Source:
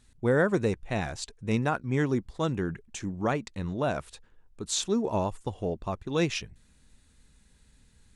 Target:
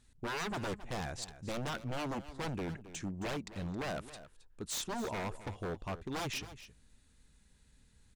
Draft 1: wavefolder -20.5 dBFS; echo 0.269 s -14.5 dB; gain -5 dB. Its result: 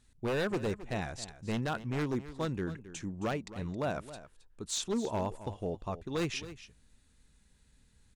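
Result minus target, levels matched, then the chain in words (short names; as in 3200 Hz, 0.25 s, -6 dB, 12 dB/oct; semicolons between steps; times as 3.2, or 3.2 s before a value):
wavefolder: distortion -13 dB
wavefolder -27 dBFS; echo 0.269 s -14.5 dB; gain -5 dB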